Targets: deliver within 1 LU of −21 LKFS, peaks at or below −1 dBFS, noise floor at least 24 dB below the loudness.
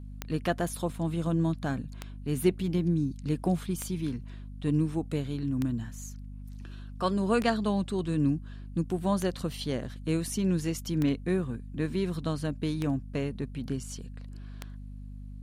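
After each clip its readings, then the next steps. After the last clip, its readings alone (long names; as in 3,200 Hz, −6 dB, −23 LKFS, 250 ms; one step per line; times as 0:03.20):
number of clicks 9; mains hum 50 Hz; hum harmonics up to 250 Hz; level of the hum −40 dBFS; integrated loudness −30.5 LKFS; sample peak −12.0 dBFS; target loudness −21.0 LKFS
→ click removal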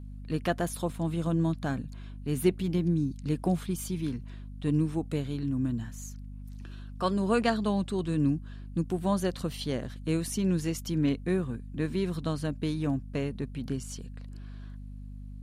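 number of clicks 0; mains hum 50 Hz; hum harmonics up to 250 Hz; level of the hum −40 dBFS
→ mains-hum notches 50/100/150/200/250 Hz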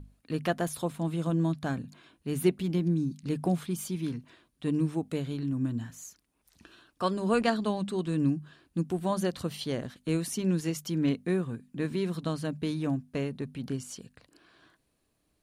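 mains hum none found; integrated loudness −31.0 LKFS; sample peak −12.0 dBFS; target loudness −21.0 LKFS
→ level +10 dB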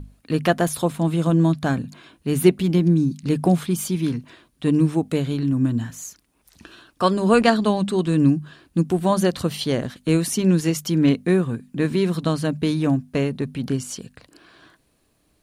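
integrated loudness −21.0 LKFS; sample peak −2.0 dBFS; background noise floor −65 dBFS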